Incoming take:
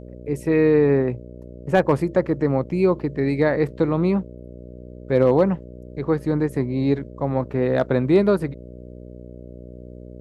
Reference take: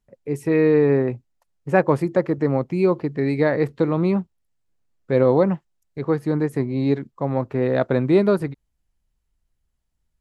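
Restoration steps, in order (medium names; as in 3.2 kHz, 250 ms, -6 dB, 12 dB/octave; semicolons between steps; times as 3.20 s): clip repair -7 dBFS; de-hum 61 Hz, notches 10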